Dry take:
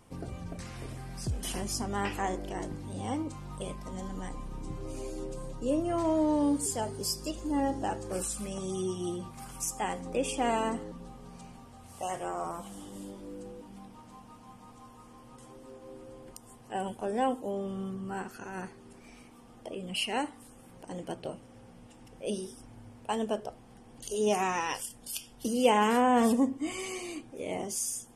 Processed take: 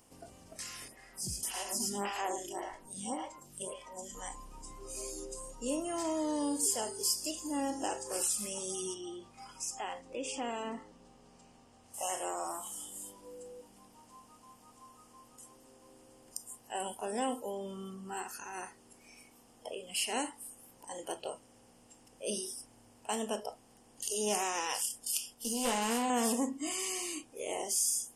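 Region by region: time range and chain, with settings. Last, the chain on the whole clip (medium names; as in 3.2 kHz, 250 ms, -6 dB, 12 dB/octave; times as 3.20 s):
0.88–4.15 s: comb 5.2 ms, depth 32% + delay 109 ms -5 dB + lamp-driven phase shifter 1.8 Hz
8.94–11.94 s: distance through air 110 m + compression 1.5:1, threshold -38 dBFS
25.34–26.10 s: valve stage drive 20 dB, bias 0.75 + doubling 13 ms -4 dB
whole clip: spectral levelling over time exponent 0.6; spectral noise reduction 15 dB; tone controls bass -2 dB, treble +9 dB; trim -8 dB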